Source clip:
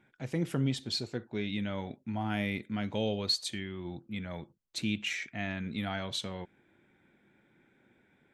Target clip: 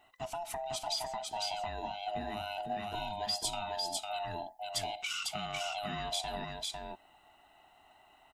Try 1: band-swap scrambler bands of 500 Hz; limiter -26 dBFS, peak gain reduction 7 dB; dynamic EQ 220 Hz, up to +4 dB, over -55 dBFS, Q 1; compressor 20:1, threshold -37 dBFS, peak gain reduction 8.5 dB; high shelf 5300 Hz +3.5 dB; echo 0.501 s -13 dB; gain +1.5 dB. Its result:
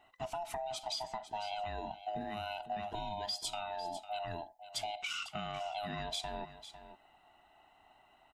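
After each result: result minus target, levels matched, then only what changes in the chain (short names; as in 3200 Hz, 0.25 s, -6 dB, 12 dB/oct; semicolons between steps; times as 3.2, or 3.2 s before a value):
echo-to-direct -10.5 dB; 8000 Hz band -4.0 dB
change: echo 0.501 s -2.5 dB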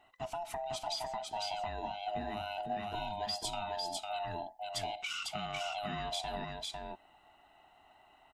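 8000 Hz band -4.0 dB
change: high shelf 5300 Hz +11.5 dB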